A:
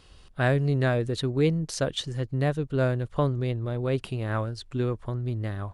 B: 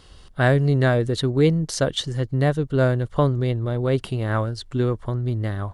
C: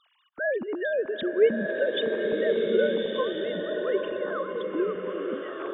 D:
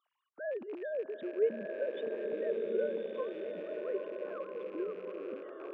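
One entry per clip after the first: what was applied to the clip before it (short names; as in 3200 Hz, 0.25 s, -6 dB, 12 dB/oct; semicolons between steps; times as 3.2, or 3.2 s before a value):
notch 2500 Hz, Q 8.4; gain +5.5 dB
sine-wave speech; bloom reverb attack 1.38 s, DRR 0.5 dB; gain -8.5 dB
rattling part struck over -43 dBFS, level -27 dBFS; band-pass 530 Hz, Q 0.82; gain -9 dB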